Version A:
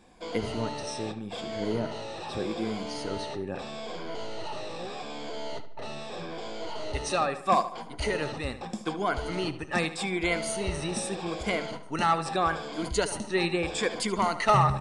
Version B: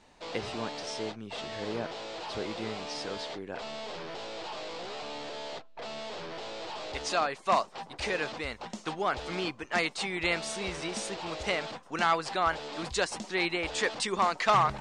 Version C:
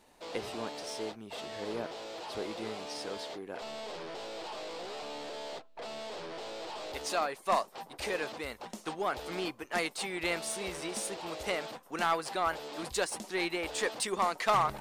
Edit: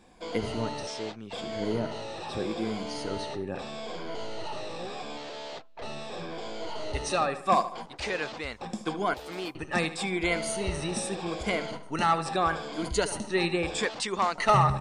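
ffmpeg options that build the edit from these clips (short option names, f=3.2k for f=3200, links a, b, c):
-filter_complex "[1:a]asplit=4[a][b][c][d];[0:a]asplit=6[e][f][g][h][i][j];[e]atrim=end=0.872[k];[a]atrim=start=0.868:end=1.332[l];[f]atrim=start=1.328:end=5.172[m];[b]atrim=start=5.168:end=5.822[n];[g]atrim=start=5.818:end=7.862[o];[c]atrim=start=7.858:end=8.612[p];[h]atrim=start=8.608:end=9.142[q];[2:a]atrim=start=9.138:end=9.552[r];[i]atrim=start=9.548:end=13.852[s];[d]atrim=start=13.848:end=14.382[t];[j]atrim=start=14.378[u];[k][l]acrossfade=d=0.004:c1=hsin:c2=hsin[v];[v][m]acrossfade=d=0.004:c1=hsin:c2=hsin[w];[w][n]acrossfade=d=0.004:c1=hsin:c2=hsin[x];[x][o]acrossfade=d=0.004:c1=hsin:c2=hsin[y];[y][p]acrossfade=d=0.004:c1=hsin:c2=hsin[z];[z][q]acrossfade=d=0.004:c1=hsin:c2=hsin[aa];[aa][r]acrossfade=d=0.004:c1=hsin:c2=hsin[ab];[ab][s]acrossfade=d=0.004:c1=hsin:c2=hsin[ac];[ac][t]acrossfade=d=0.004:c1=hsin:c2=hsin[ad];[ad][u]acrossfade=d=0.004:c1=hsin:c2=hsin"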